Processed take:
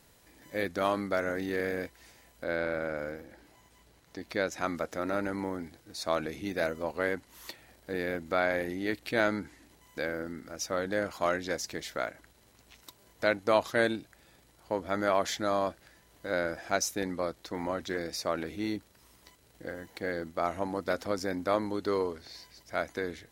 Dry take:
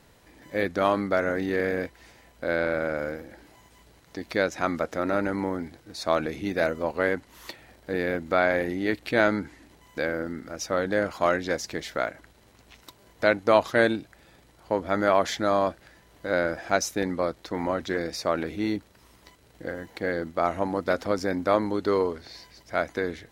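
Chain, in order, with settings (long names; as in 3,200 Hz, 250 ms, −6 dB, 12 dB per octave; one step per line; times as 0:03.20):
high-shelf EQ 5,100 Hz +10 dB, from 0:02.44 +2.5 dB, from 0:04.47 +8 dB
level −6 dB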